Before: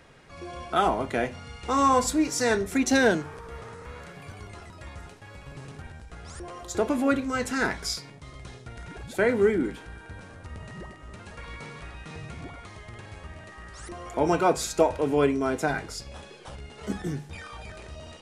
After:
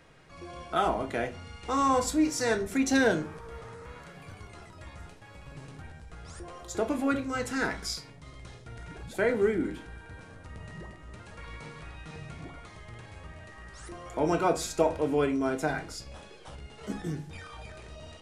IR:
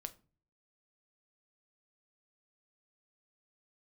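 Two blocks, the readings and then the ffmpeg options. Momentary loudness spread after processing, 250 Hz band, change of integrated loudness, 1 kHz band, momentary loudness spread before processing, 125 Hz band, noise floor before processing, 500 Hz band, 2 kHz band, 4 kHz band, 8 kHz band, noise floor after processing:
21 LU, -2.5 dB, -3.5 dB, -4.0 dB, 21 LU, -3.0 dB, -47 dBFS, -3.5 dB, -3.5 dB, -3.5 dB, -4.0 dB, -50 dBFS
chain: -filter_complex "[1:a]atrim=start_sample=2205[a];[0:a][a]afir=irnorm=-1:irlink=0"

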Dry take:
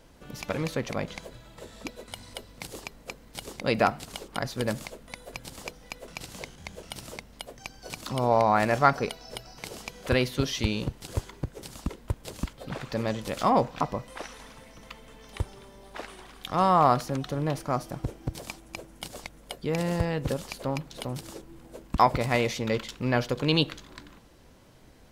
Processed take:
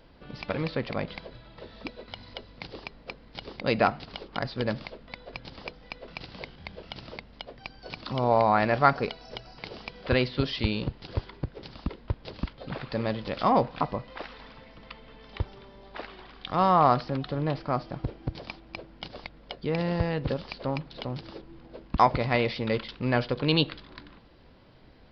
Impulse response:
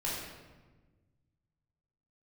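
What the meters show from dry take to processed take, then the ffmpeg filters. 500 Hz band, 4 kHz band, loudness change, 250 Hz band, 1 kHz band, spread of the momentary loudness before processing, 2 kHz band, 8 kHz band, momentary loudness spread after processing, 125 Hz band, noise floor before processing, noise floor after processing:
0.0 dB, 0.0 dB, +0.5 dB, 0.0 dB, 0.0 dB, 20 LU, 0.0 dB, under -20 dB, 21 LU, 0.0 dB, -53 dBFS, -53 dBFS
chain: -af "aresample=11025,aresample=44100"

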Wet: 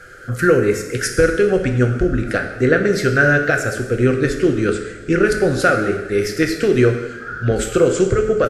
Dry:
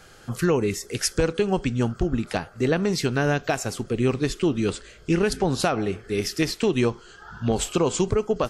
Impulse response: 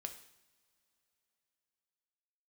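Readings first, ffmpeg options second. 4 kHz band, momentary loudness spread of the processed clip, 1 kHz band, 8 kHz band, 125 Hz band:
+0.5 dB, 6 LU, +6.0 dB, +2.0 dB, +6.5 dB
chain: -filter_complex "[0:a]firequalizer=gain_entry='entry(110,0);entry(180,-4);entry(530,4);entry(930,-18);entry(1400,10);entry(2800,-7);entry(8900,-4)':delay=0.05:min_phase=1[a];[1:a]atrim=start_sample=2205,asetrate=26901,aresample=44100[b];[a][b]afir=irnorm=-1:irlink=0,volume=7dB"

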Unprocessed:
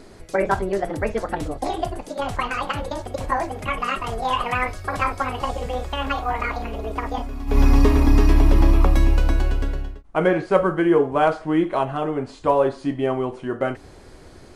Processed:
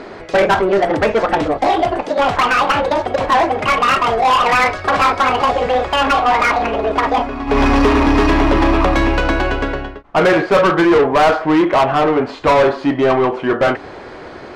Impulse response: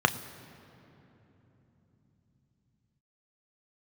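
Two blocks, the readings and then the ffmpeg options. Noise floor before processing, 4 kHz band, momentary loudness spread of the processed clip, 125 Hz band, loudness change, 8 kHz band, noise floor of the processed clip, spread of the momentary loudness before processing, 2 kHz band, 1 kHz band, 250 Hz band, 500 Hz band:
-45 dBFS, +12.0 dB, 5 LU, -0.5 dB, +8.0 dB, +7.0 dB, -33 dBFS, 11 LU, +11.5 dB, +11.0 dB, +7.0 dB, +8.5 dB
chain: -filter_complex "[0:a]adynamicsmooth=sensitivity=4.5:basefreq=3.6k,asplit=2[a][b];[b]highpass=f=720:p=1,volume=26dB,asoftclip=type=tanh:threshold=-4dB[c];[a][c]amix=inputs=2:normalize=0,lowpass=f=2.9k:p=1,volume=-6dB"

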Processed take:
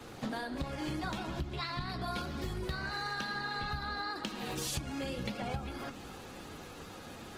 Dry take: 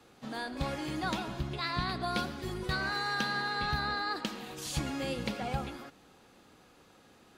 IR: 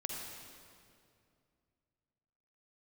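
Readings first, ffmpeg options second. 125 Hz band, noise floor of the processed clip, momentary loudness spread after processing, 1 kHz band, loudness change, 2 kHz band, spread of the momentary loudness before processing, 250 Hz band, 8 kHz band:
-1.5 dB, -48 dBFS, 11 LU, -4.0 dB, -4.0 dB, -4.5 dB, 8 LU, -2.0 dB, +0.5 dB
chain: -filter_complex "[0:a]flanger=delay=8:depth=8.7:regen=-58:speed=0.56:shape=triangular,acrossover=split=120|840|3400[a][b][c][d];[a]acontrast=50[e];[e][b][c][d]amix=inputs=4:normalize=0,bandreject=f=116.1:t=h:w=4,bandreject=f=232.2:t=h:w=4,bandreject=f=348.3:t=h:w=4,bandreject=f=464.4:t=h:w=4,acompressor=threshold=-50dB:ratio=12,volume=16dB" -ar 48000 -c:a libopus -b:a 16k

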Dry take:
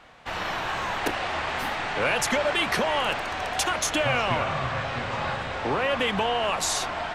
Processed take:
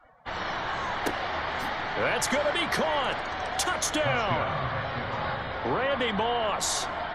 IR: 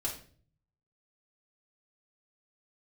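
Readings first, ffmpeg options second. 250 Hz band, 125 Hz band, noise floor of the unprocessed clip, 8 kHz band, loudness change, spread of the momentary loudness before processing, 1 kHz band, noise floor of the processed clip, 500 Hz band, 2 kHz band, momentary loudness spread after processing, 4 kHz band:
-1.5 dB, -1.5 dB, -33 dBFS, -1.5 dB, -2.0 dB, 6 LU, -1.5 dB, -35 dBFS, -1.5 dB, -2.5 dB, 6 LU, -3.0 dB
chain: -af "afftdn=nr=23:nf=-48,equalizer=f=2.6k:w=7.3:g=-9.5,areverse,acompressor=mode=upward:threshold=-41dB:ratio=2.5,areverse,volume=-1.5dB"

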